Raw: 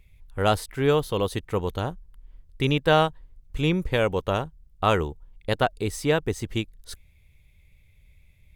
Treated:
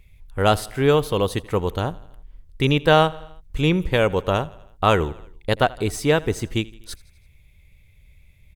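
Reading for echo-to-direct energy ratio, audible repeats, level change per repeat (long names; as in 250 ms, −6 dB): −20.0 dB, 3, −4.5 dB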